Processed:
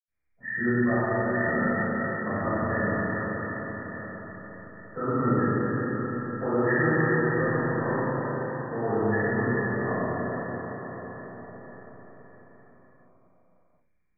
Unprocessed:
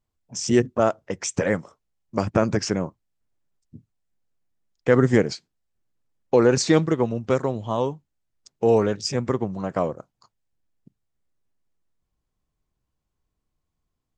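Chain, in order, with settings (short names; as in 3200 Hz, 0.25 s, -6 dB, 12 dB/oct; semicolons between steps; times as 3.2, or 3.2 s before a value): nonlinear frequency compression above 1200 Hz 4:1; dynamic EQ 480 Hz, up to -6 dB, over -32 dBFS, Q 1.7; reverb RT60 5.8 s, pre-delay 77 ms, DRR -60 dB; gain -2 dB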